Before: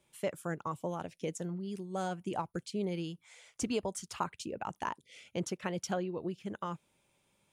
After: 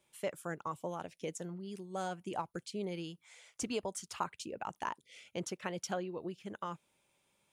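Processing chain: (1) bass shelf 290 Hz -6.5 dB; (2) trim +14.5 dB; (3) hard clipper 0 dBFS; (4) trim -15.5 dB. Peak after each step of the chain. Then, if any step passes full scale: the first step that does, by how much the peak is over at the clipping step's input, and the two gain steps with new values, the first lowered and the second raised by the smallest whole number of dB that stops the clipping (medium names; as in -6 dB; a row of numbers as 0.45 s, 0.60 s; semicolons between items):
-19.0 dBFS, -4.5 dBFS, -4.5 dBFS, -20.0 dBFS; nothing clips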